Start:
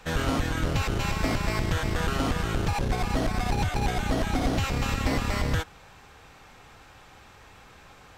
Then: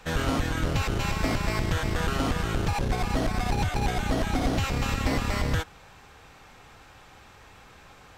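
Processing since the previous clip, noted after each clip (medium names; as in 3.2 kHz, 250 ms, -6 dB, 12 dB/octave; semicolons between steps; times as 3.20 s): no audible change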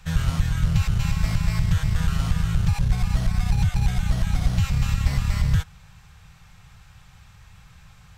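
FFT filter 170 Hz 0 dB, 280 Hz -26 dB, 1.1 kHz -13 dB, 7.9 kHz -7 dB; trim +7.5 dB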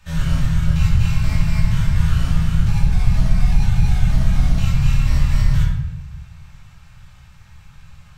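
simulated room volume 330 m³, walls mixed, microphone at 2.6 m; trim -5.5 dB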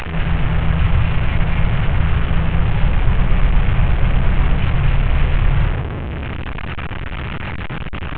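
one-bit delta coder 16 kbps, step -17.5 dBFS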